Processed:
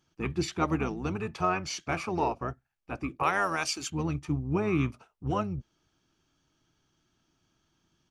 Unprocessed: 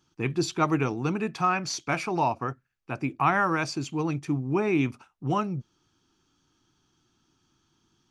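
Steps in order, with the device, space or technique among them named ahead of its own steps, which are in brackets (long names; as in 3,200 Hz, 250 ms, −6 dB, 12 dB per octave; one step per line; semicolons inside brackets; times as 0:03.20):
octave pedal (pitch-shifted copies added −12 semitones −5 dB)
0:03.23–0:03.90: RIAA equalisation recording
level −4.5 dB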